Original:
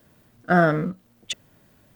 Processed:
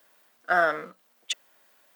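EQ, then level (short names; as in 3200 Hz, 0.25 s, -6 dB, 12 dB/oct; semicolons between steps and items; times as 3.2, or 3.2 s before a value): HPF 740 Hz 12 dB/oct; 0.0 dB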